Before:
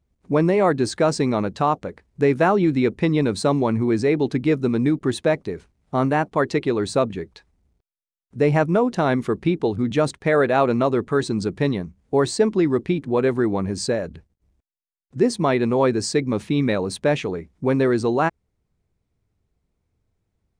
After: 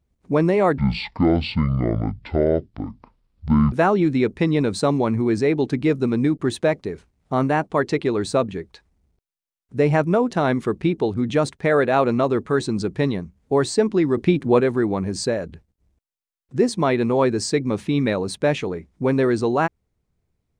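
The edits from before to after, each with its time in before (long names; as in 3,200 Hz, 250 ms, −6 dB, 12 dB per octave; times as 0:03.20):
0:00.78–0:02.34: play speed 53%
0:12.79–0:13.22: clip gain +4.5 dB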